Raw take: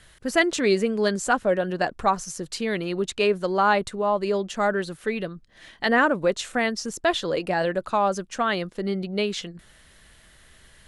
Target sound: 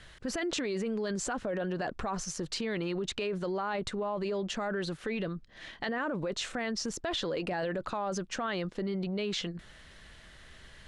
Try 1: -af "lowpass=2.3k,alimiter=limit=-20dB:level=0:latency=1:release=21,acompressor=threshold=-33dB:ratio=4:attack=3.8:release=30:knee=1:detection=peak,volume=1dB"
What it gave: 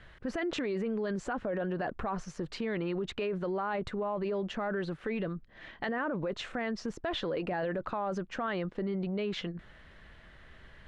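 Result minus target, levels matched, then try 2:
8000 Hz band -13.5 dB
-af "lowpass=5.9k,alimiter=limit=-20dB:level=0:latency=1:release=21,acompressor=threshold=-33dB:ratio=4:attack=3.8:release=30:knee=1:detection=peak,volume=1dB"

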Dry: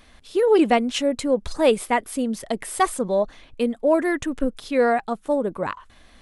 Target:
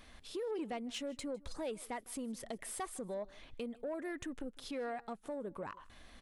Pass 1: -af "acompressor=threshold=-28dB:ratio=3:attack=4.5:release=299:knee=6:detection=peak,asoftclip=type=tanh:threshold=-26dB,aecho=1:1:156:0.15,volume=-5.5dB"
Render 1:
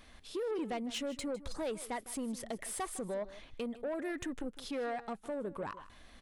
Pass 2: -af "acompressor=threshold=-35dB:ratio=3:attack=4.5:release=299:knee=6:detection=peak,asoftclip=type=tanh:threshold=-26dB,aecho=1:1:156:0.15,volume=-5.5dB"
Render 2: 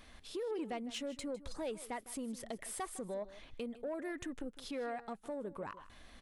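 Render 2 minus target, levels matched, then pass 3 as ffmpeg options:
echo-to-direct +6.5 dB
-af "acompressor=threshold=-35dB:ratio=3:attack=4.5:release=299:knee=6:detection=peak,asoftclip=type=tanh:threshold=-26dB,aecho=1:1:156:0.0708,volume=-5.5dB"

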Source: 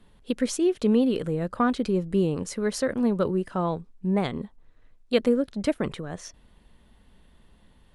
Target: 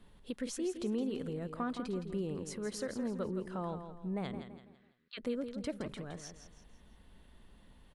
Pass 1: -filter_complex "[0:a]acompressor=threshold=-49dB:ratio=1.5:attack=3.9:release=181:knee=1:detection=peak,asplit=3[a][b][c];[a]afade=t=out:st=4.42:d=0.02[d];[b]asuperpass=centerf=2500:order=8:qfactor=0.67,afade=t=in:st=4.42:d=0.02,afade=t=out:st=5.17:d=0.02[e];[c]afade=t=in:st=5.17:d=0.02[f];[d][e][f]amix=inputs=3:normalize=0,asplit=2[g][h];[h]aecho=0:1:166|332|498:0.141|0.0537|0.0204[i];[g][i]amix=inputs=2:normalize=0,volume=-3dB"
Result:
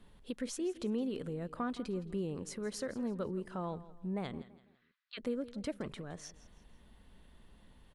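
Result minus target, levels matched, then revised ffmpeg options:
echo-to-direct -8 dB
-filter_complex "[0:a]acompressor=threshold=-49dB:ratio=1.5:attack=3.9:release=181:knee=1:detection=peak,asplit=3[a][b][c];[a]afade=t=out:st=4.42:d=0.02[d];[b]asuperpass=centerf=2500:order=8:qfactor=0.67,afade=t=in:st=4.42:d=0.02,afade=t=out:st=5.17:d=0.02[e];[c]afade=t=in:st=5.17:d=0.02[f];[d][e][f]amix=inputs=3:normalize=0,asplit=2[g][h];[h]aecho=0:1:166|332|498|664:0.355|0.135|0.0512|0.0195[i];[g][i]amix=inputs=2:normalize=0,volume=-3dB"

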